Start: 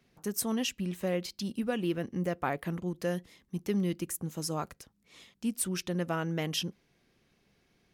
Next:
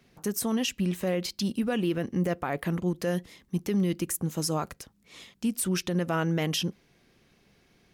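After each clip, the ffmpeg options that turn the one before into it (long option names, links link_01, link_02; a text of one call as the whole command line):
ffmpeg -i in.wav -af "alimiter=level_in=1.5dB:limit=-24dB:level=0:latency=1:release=56,volume=-1.5dB,volume=6.5dB" out.wav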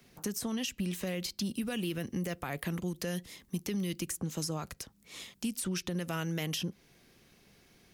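ffmpeg -i in.wav -filter_complex "[0:a]highshelf=frequency=6400:gain=9.5,acrossover=split=170|2100|6800[link_01][link_02][link_03][link_04];[link_01]acompressor=threshold=-39dB:ratio=4[link_05];[link_02]acompressor=threshold=-37dB:ratio=4[link_06];[link_03]acompressor=threshold=-39dB:ratio=4[link_07];[link_04]acompressor=threshold=-47dB:ratio=4[link_08];[link_05][link_06][link_07][link_08]amix=inputs=4:normalize=0" out.wav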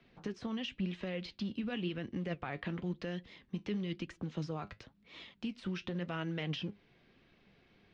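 ffmpeg -i in.wav -af "acrusher=bits=7:mode=log:mix=0:aa=0.000001,flanger=delay=3:depth=6.9:regen=66:speed=0.96:shape=sinusoidal,lowpass=frequency=3700:width=0.5412,lowpass=frequency=3700:width=1.3066,volume=1.5dB" out.wav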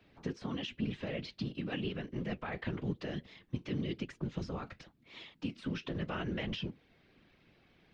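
ffmpeg -i in.wav -af "afftfilt=real='hypot(re,im)*cos(2*PI*random(0))':imag='hypot(re,im)*sin(2*PI*random(1))':win_size=512:overlap=0.75,volume=6.5dB" out.wav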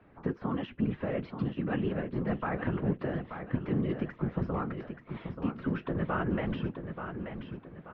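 ffmpeg -i in.wav -filter_complex "[0:a]lowpass=frequency=1300:width_type=q:width=1.5,asplit=2[link_01][link_02];[link_02]aecho=0:1:882|1764|2646|3528:0.398|0.155|0.0606|0.0236[link_03];[link_01][link_03]amix=inputs=2:normalize=0,volume=5.5dB" out.wav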